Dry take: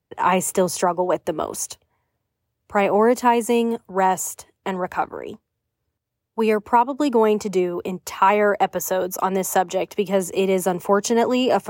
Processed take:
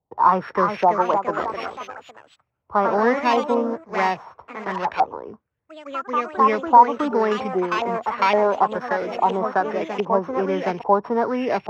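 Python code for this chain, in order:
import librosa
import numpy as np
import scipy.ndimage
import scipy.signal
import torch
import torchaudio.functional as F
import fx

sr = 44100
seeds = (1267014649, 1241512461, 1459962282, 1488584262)

y = np.r_[np.sort(x[:len(x) // 8 * 8].reshape(-1, 8), axis=1).ravel(), x[len(x) // 8 * 8:]]
y = fx.filter_lfo_lowpass(y, sr, shape='saw_up', hz=1.2, low_hz=770.0, high_hz=2600.0, q=4.2)
y = fx.echo_pitch(y, sr, ms=395, semitones=2, count=3, db_per_echo=-6.0)
y = y * 10.0 ** (-4.5 / 20.0)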